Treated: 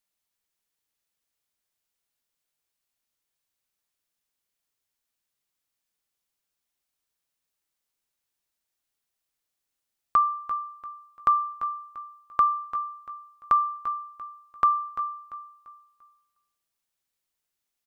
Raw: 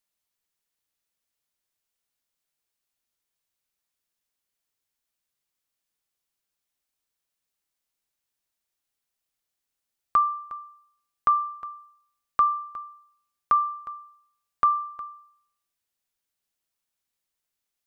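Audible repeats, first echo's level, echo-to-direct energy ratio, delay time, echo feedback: 3, -12.0 dB, -11.5 dB, 0.343 s, 35%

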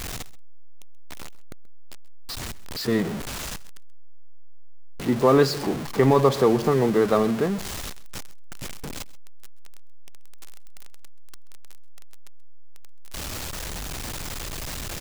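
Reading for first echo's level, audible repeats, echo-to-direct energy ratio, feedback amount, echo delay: -20.5 dB, 1, -20.5 dB, no steady repeat, 0.131 s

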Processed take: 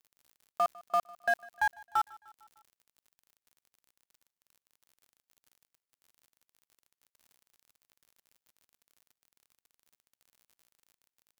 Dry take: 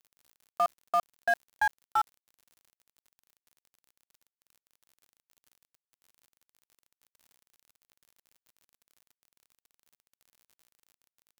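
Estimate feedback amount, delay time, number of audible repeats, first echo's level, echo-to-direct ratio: 58%, 0.151 s, 3, -23.0 dB, -21.5 dB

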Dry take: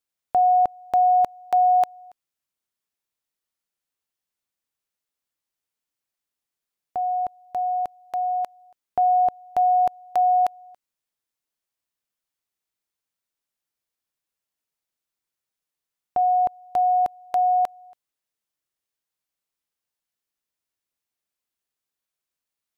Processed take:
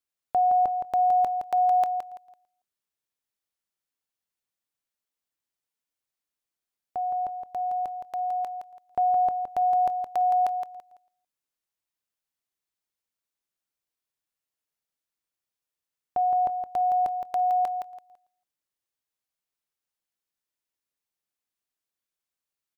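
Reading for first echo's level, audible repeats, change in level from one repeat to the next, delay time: -7.0 dB, 3, -11.5 dB, 0.167 s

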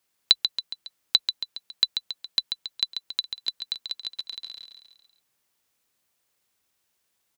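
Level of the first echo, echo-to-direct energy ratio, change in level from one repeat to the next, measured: -7.5 dB, -6.0 dB, -5.5 dB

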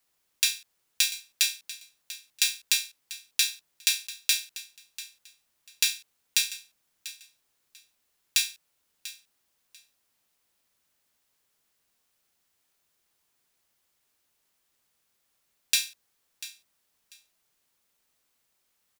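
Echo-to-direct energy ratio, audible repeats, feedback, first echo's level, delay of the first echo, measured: -16.0 dB, 2, 20%, -16.0 dB, 0.692 s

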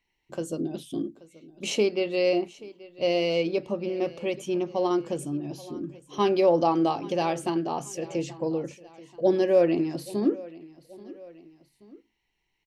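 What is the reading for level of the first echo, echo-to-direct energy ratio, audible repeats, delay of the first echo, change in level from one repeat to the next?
-20.0 dB, -19.0 dB, 2, 0.831 s, -6.0 dB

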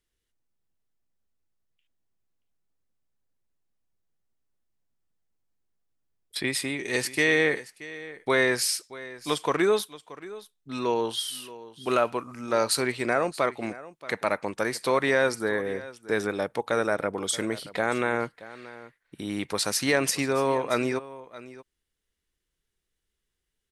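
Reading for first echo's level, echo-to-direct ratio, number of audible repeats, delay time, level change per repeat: -17.5 dB, -17.5 dB, 1, 0.628 s, no steady repeat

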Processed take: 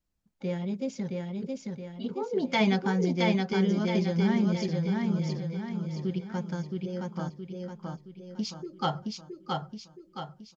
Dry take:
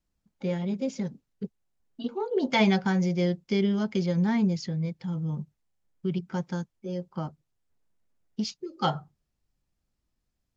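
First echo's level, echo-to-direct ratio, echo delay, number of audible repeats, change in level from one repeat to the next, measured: -3.0 dB, -2.0 dB, 0.67 s, 5, -6.5 dB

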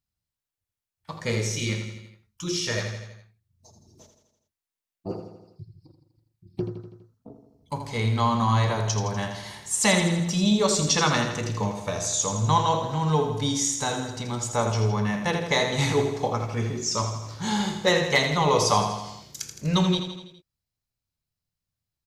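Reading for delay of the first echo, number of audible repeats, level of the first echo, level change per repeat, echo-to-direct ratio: 82 ms, 5, -8.0 dB, -4.5 dB, -6.0 dB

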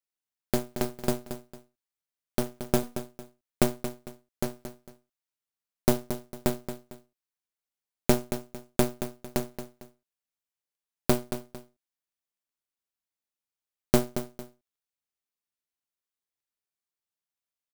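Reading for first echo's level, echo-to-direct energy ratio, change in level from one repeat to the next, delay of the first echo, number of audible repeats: -10.5 dB, -10.0 dB, -10.0 dB, 0.226 s, 2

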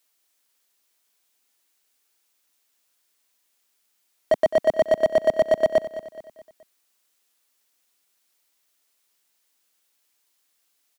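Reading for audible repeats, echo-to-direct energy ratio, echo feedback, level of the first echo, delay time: 4, -13.0 dB, 46%, -14.0 dB, 0.212 s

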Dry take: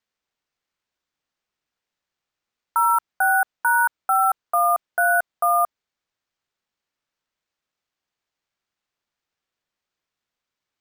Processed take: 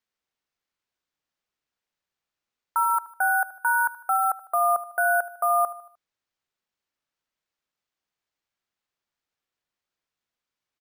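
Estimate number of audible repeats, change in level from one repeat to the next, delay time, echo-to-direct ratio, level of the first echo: 3, -6.5 dB, 76 ms, -16.0 dB, -17.0 dB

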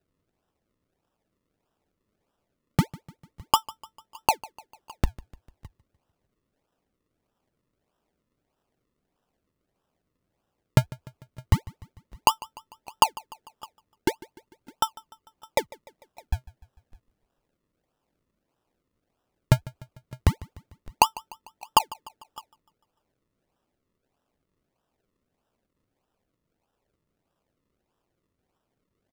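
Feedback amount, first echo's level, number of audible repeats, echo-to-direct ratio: 53%, -21.0 dB, 3, -19.5 dB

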